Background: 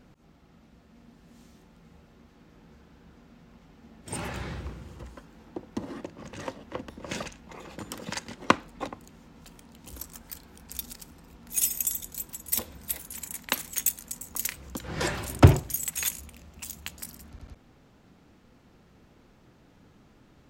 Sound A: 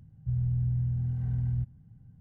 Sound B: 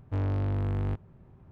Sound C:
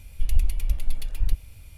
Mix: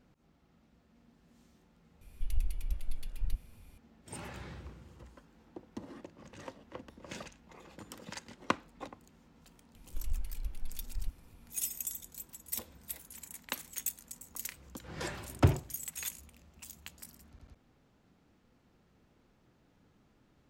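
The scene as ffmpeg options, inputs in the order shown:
-filter_complex "[3:a]asplit=2[s0][s1];[0:a]volume=0.316[s2];[s0]atrim=end=1.77,asetpts=PTS-STARTPTS,volume=0.282,afade=t=in:d=0.004:c=hsin,afade=t=out:st=1.766:d=0.004:c=hsin,adelay=2010[s3];[s1]atrim=end=1.77,asetpts=PTS-STARTPTS,volume=0.188,afade=t=in:d=0.004:c=hsin,afade=t=out:st=1.766:d=0.004:c=hsin,adelay=9750[s4];[s2][s3][s4]amix=inputs=3:normalize=0"

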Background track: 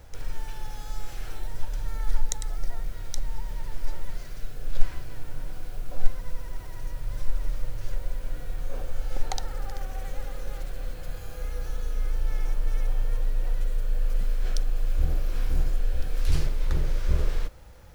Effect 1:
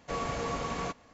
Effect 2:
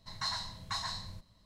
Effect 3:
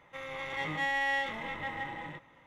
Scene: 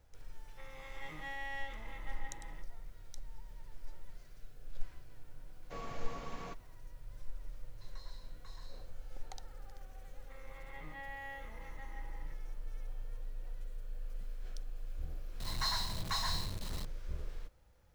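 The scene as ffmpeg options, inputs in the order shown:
-filter_complex "[3:a]asplit=2[s0][s1];[2:a]asplit=2[s2][s3];[0:a]volume=0.133[s4];[1:a]lowpass=6600[s5];[s2]acompressor=threshold=0.0112:ratio=6:attack=3.2:release=140:knee=1:detection=peak[s6];[s1]lowpass=2400[s7];[s3]aeval=exprs='val(0)+0.5*0.0133*sgn(val(0))':c=same[s8];[s0]atrim=end=2.46,asetpts=PTS-STARTPTS,volume=0.224,afade=t=in:d=0.004:c=hsin,afade=t=out:st=2.456:d=0.004:c=hsin,adelay=440[s9];[s5]atrim=end=1.13,asetpts=PTS-STARTPTS,volume=0.251,afade=t=in:d=0.004:c=hsin,afade=t=out:st=1.126:d=0.004:c=hsin,adelay=5620[s10];[s6]atrim=end=1.45,asetpts=PTS-STARTPTS,volume=0.158,afade=t=in:d=0.004:c=hsin,afade=t=out:st=1.446:d=0.004:c=hsin,adelay=7740[s11];[s7]atrim=end=2.46,asetpts=PTS-STARTPTS,volume=0.178,afade=t=in:d=0.004:c=hsin,afade=t=out:st=2.456:d=0.004:c=hsin,adelay=10160[s12];[s8]atrim=end=1.45,asetpts=PTS-STARTPTS,volume=0.794,afade=t=in:d=0.004:c=hsin,afade=t=out:st=1.446:d=0.004:c=hsin,adelay=679140S[s13];[s4][s9][s10][s11][s12][s13]amix=inputs=6:normalize=0"

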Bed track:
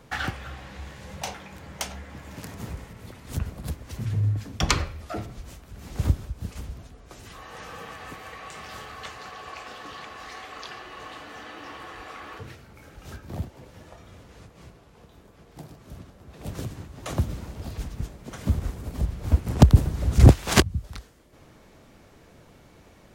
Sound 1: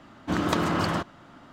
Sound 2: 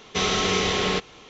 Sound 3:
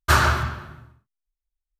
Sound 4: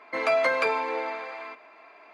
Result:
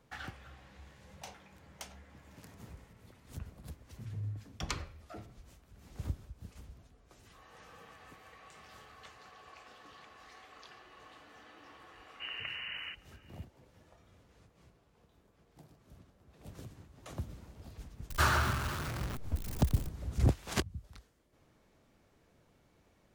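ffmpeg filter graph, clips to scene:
-filter_complex "[0:a]volume=0.178[s0];[1:a]lowpass=f=2600:t=q:w=0.5098,lowpass=f=2600:t=q:w=0.6013,lowpass=f=2600:t=q:w=0.9,lowpass=f=2600:t=q:w=2.563,afreqshift=-3100[s1];[3:a]aeval=exprs='val(0)+0.5*0.0944*sgn(val(0))':c=same[s2];[s1]atrim=end=1.52,asetpts=PTS-STARTPTS,volume=0.15,afade=t=in:d=0.004:c=hsin,afade=t=out:st=1.516:d=0.004:c=hsin,adelay=11920[s3];[s2]atrim=end=1.79,asetpts=PTS-STARTPTS,volume=0.237,afade=t=in:d=0.004:c=hsin,afade=t=out:st=1.786:d=0.004:c=hsin,adelay=18100[s4];[s0][s3][s4]amix=inputs=3:normalize=0"

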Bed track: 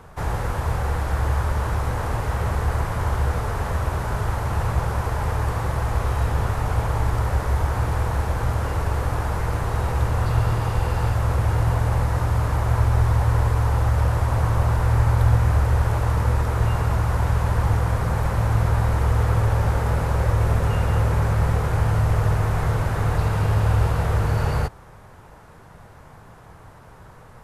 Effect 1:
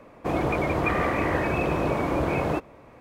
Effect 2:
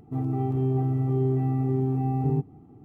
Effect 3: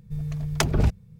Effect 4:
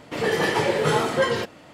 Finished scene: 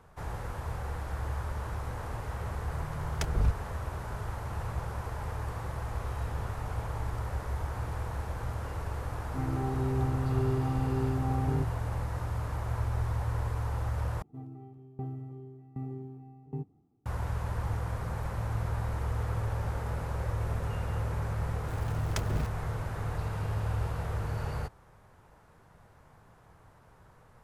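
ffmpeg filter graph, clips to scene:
-filter_complex "[3:a]asplit=2[s0][s1];[2:a]asplit=2[s2][s3];[0:a]volume=0.237[s4];[s0]asubboost=boost=9:cutoff=110[s5];[s2]lowpass=f=1400:t=q:w=4.9[s6];[s3]aeval=exprs='val(0)*pow(10,-21*if(lt(mod(1.3*n/s,1),2*abs(1.3)/1000),1-mod(1.3*n/s,1)/(2*abs(1.3)/1000),(mod(1.3*n/s,1)-2*abs(1.3)/1000)/(1-2*abs(1.3)/1000))/20)':c=same[s7];[s1]aeval=exprs='val(0)*gte(abs(val(0)),0.0447)':c=same[s8];[s4]asplit=2[s9][s10];[s9]atrim=end=14.224[s11];[s7]atrim=end=2.84,asetpts=PTS-STARTPTS,volume=0.316[s12];[s10]atrim=start=17.056[s13];[s5]atrim=end=1.19,asetpts=PTS-STARTPTS,volume=0.237,afade=t=in:d=0.004:c=hsin,afade=t=out:st=1.186:d=0.004:c=hsin,adelay=2610[s14];[s6]atrim=end=2.84,asetpts=PTS-STARTPTS,volume=0.473,afade=t=in:d=0.004:c=hsin,afade=t=out:st=2.836:d=0.004:c=hsin,adelay=9230[s15];[s8]atrim=end=1.19,asetpts=PTS-STARTPTS,volume=0.251,afade=t=in:d=0.004:c=hsin,afade=t=out:st=1.186:d=0.004:c=hsin,adelay=21560[s16];[s11][s12]acrossfade=d=0.004:c1=hsin:c2=hsin[s17];[s17][s13]acrossfade=d=0.004:c1=hsin:c2=hsin[s18];[s18][s14][s15][s16]amix=inputs=4:normalize=0"

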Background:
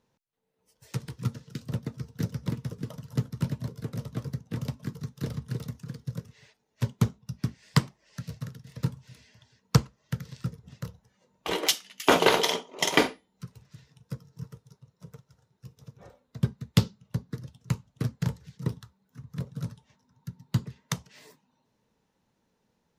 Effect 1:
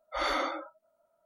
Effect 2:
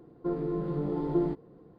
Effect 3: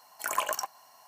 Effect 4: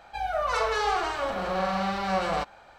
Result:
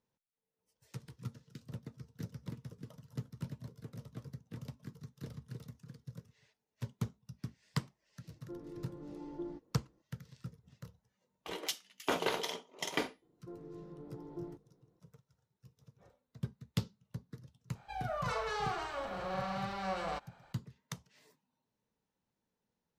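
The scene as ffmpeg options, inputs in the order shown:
-filter_complex "[2:a]asplit=2[s0][s1];[0:a]volume=0.224[s2];[s0]aecho=1:1:3.5:0.47[s3];[s1]bandreject=f=50:t=h:w=6,bandreject=f=100:t=h:w=6,bandreject=f=150:t=h:w=6,bandreject=f=200:t=h:w=6[s4];[s3]atrim=end=1.78,asetpts=PTS-STARTPTS,volume=0.15,afade=t=in:d=0.004:c=hsin,afade=t=out:st=1.776:d=0.004:c=hsin,adelay=8240[s5];[s4]atrim=end=1.78,asetpts=PTS-STARTPTS,volume=0.133,afade=t=in:d=0.004:c=hsin,afade=t=out:st=1.776:d=0.004:c=hsin,adelay=13220[s6];[4:a]atrim=end=2.78,asetpts=PTS-STARTPTS,volume=0.299,afade=t=in:d=0.004:c=hsin,afade=t=out:st=2.776:d=0.004:c=hsin,adelay=17750[s7];[s2][s5][s6][s7]amix=inputs=4:normalize=0"

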